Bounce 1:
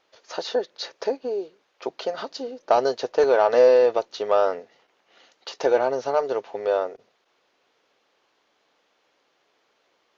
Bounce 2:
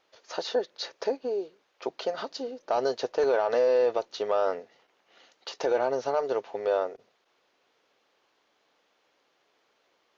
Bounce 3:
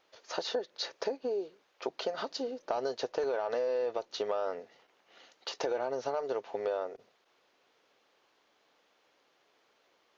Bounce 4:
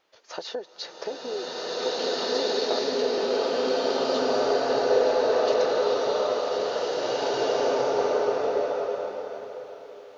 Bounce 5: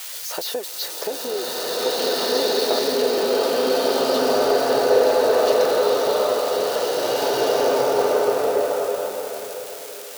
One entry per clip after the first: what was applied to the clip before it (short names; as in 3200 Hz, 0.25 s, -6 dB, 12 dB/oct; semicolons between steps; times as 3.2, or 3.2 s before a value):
limiter -13.5 dBFS, peak gain reduction 7.5 dB; gain -2.5 dB
compressor 4:1, threshold -30 dBFS, peak gain reduction 9 dB
bloom reverb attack 1.99 s, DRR -11 dB
switching spikes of -28 dBFS; gain +5 dB